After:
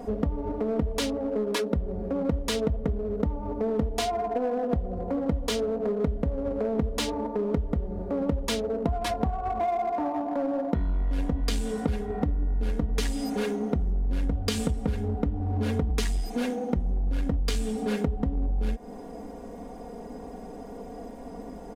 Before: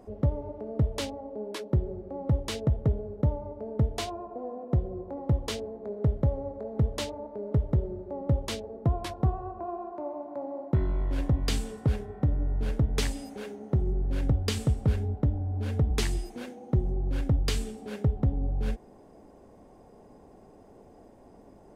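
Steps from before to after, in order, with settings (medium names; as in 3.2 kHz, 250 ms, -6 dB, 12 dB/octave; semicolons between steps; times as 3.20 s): comb 4.2 ms, depth 99%; compression 8:1, threshold -31 dBFS, peak gain reduction 13.5 dB; in parallel at -11 dB: wavefolder -36 dBFS; on the sum: trim +7.5 dB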